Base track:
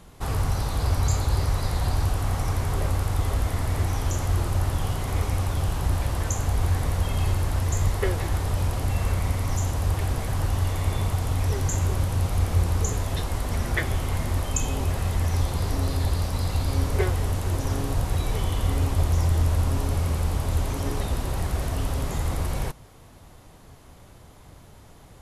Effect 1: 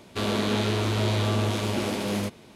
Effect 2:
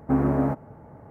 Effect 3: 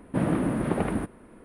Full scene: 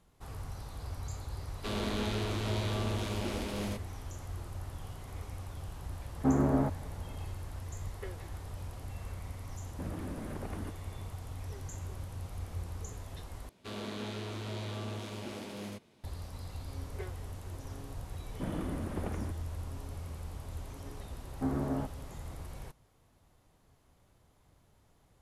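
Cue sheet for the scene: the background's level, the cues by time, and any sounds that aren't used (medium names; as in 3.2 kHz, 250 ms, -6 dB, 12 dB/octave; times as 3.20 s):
base track -17.5 dB
1.48 s: add 1 -9 dB
6.15 s: add 2 -5 dB
9.65 s: add 3 -10.5 dB + compression, threshold -27 dBFS
13.49 s: replace with 1 -14.5 dB
18.26 s: add 3 -12.5 dB
21.32 s: add 2 -11 dB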